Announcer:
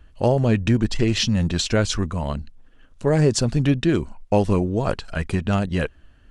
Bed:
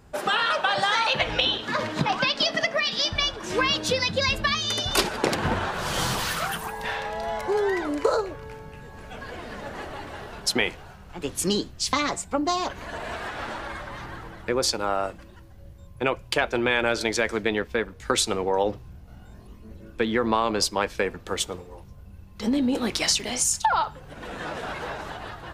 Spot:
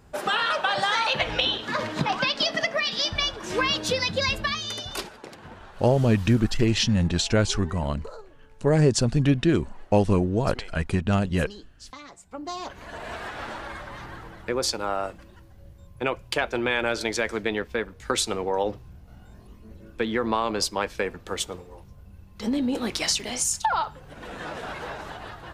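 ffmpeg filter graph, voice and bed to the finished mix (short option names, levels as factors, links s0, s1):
-filter_complex "[0:a]adelay=5600,volume=0.841[s0];[1:a]volume=6.31,afade=t=out:st=4.24:d=0.98:silence=0.125893,afade=t=in:st=12.17:d=0.98:silence=0.141254[s1];[s0][s1]amix=inputs=2:normalize=0"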